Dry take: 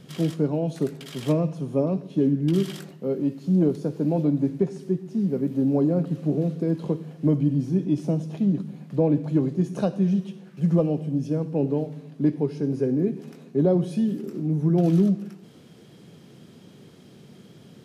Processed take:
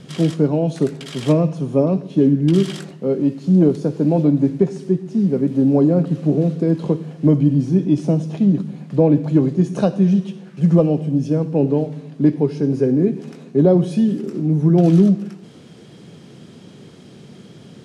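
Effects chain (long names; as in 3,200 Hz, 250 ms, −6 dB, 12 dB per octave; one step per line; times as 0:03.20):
low-pass filter 10,000 Hz 24 dB per octave
level +7 dB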